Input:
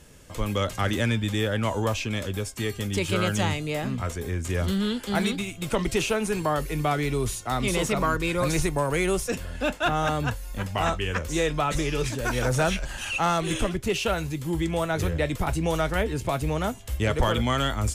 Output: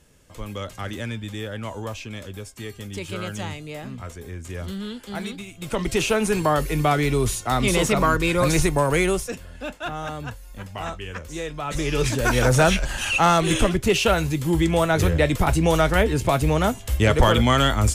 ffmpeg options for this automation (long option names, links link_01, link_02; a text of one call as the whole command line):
ffmpeg -i in.wav -af "volume=17.5dB,afade=type=in:start_time=5.49:duration=0.72:silence=0.281838,afade=type=out:start_time=8.98:duration=0.4:silence=0.281838,afade=type=in:start_time=11.61:duration=0.51:silence=0.237137" out.wav